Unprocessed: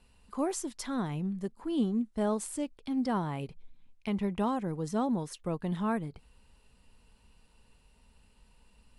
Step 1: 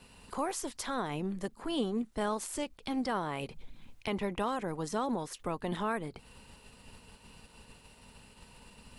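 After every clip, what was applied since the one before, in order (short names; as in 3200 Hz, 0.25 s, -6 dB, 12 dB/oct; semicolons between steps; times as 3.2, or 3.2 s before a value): spectral limiter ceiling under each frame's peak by 14 dB; compressor 1.5:1, threshold -48 dBFS, peak gain reduction 8.5 dB; gain +5 dB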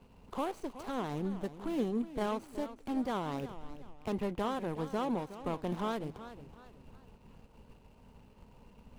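median filter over 25 samples; warbling echo 0.369 s, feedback 36%, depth 119 cents, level -13.5 dB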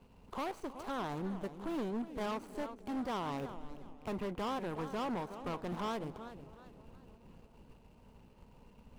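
darkening echo 0.316 s, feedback 76%, low-pass 1500 Hz, level -21.5 dB; dynamic EQ 1100 Hz, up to +5 dB, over -47 dBFS, Q 0.85; overloaded stage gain 32 dB; gain -2 dB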